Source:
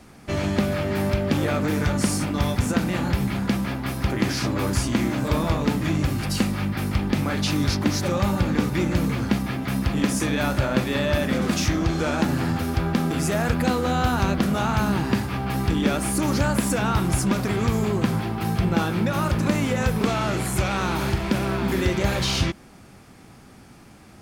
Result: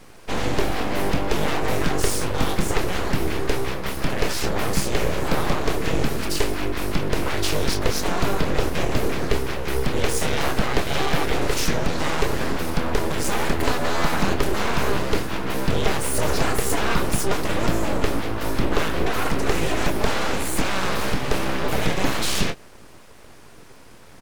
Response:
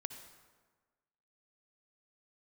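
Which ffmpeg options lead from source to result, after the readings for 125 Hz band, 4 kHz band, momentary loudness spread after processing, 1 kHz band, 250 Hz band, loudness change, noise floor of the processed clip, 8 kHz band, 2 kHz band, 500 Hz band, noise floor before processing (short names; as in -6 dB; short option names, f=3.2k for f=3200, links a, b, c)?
-4.5 dB, +2.5 dB, 3 LU, +1.5 dB, -4.5 dB, -1.0 dB, -44 dBFS, +2.5 dB, +2.0 dB, +2.0 dB, -48 dBFS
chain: -filter_complex "[0:a]asplit=2[a][b];[b]adelay=26,volume=-9dB[c];[a][c]amix=inputs=2:normalize=0,aeval=exprs='abs(val(0))':c=same,volume=3dB"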